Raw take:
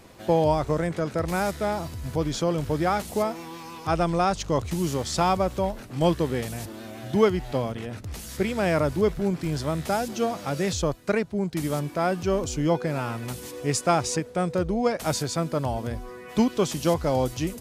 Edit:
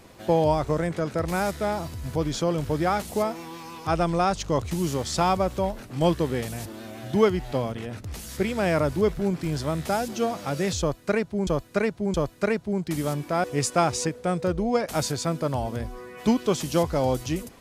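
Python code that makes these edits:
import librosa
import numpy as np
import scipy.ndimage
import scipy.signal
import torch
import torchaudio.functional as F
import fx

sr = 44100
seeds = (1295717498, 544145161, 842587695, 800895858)

y = fx.edit(x, sr, fx.repeat(start_s=10.8, length_s=0.67, count=3),
    fx.cut(start_s=12.1, length_s=1.45), tone=tone)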